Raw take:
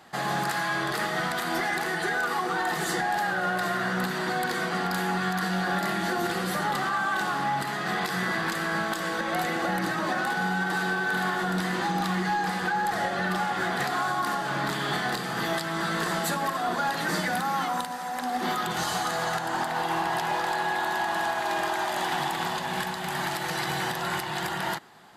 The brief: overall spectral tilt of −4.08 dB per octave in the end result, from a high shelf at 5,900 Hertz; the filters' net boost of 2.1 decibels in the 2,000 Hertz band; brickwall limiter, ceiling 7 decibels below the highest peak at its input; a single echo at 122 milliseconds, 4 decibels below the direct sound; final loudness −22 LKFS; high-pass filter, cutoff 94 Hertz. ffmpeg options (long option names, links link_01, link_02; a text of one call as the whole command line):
ffmpeg -i in.wav -af "highpass=94,equalizer=frequency=2000:width_type=o:gain=3.5,highshelf=frequency=5900:gain=-8,alimiter=limit=-23dB:level=0:latency=1,aecho=1:1:122:0.631,volume=7dB" out.wav